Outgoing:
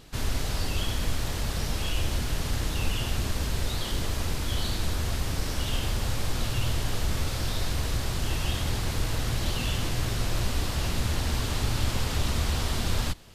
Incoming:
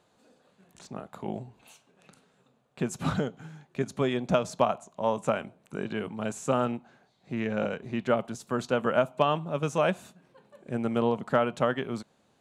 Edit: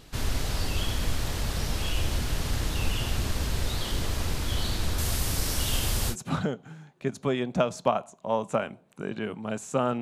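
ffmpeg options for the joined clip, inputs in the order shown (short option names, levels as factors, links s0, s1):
-filter_complex "[0:a]asettb=1/sr,asplit=3[s0][s1][s2];[s0]atrim=end=4.984[s3];[s1]atrim=start=4.98:end=6.16,asetpts=PTS-STARTPTS,afade=t=in:d=0.004:c=qsin,afade=t=out:st=1.176:d=0.004:c=qsin,equalizer=f=12000:t=o:w=1.7:g=10.5[s4];[s2]atrim=start=6.156[s5];[s3][s4]acrossfade=d=0.004:c1=hsin:c2=qsin[s6];[s6][s5]acrossfade=d=0.004:c1=qsin:c2=hsin,apad=whole_dur=10.01,atrim=end=10.01,atrim=end=6.16,asetpts=PTS-STARTPTS[s7];[1:a]atrim=start=2.82:end=6.75,asetpts=PTS-STARTPTS[s8];[s7][s8]acrossfade=d=0.08:c1=tri:c2=tri"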